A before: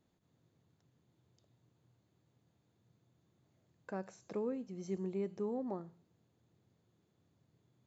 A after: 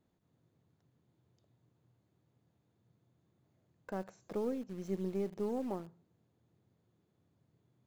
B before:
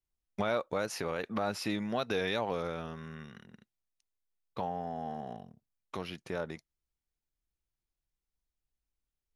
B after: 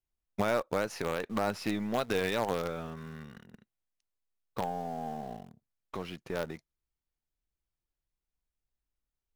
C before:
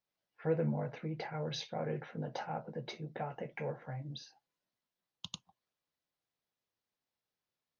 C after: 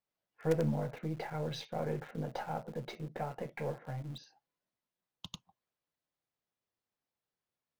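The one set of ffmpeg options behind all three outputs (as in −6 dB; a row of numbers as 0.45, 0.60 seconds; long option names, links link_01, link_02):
-filter_complex "[0:a]highshelf=frequency=2800:gain=-7,asplit=2[link_01][link_02];[link_02]acrusher=bits=5:dc=4:mix=0:aa=0.000001,volume=-8dB[link_03];[link_01][link_03]amix=inputs=2:normalize=0"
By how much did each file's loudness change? +1.5, +1.5, +2.0 LU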